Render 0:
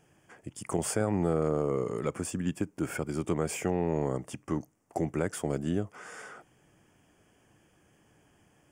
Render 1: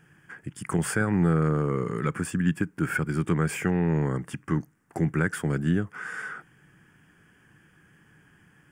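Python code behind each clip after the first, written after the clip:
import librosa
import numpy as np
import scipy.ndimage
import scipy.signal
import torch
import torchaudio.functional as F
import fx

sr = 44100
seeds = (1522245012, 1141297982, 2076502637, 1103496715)

y = fx.graphic_eq_15(x, sr, hz=(160, 630, 1600, 6300), db=(8, -10, 12, -6))
y = y * 10.0 ** (2.5 / 20.0)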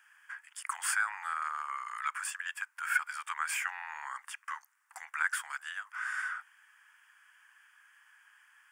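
y = scipy.signal.sosfilt(scipy.signal.butter(8, 920.0, 'highpass', fs=sr, output='sos'), x)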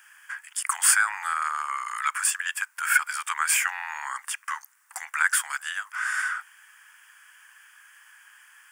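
y = fx.high_shelf(x, sr, hz=4300.0, db=10.0)
y = y * 10.0 ** (7.0 / 20.0)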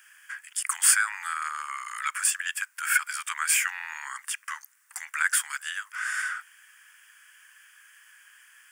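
y = scipy.signal.sosfilt(scipy.signal.butter(2, 1500.0, 'highpass', fs=sr, output='sos'), x)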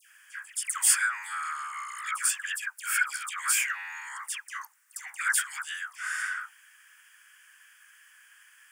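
y = fx.dispersion(x, sr, late='lows', ms=125.0, hz=1300.0)
y = y * 10.0 ** (-2.0 / 20.0)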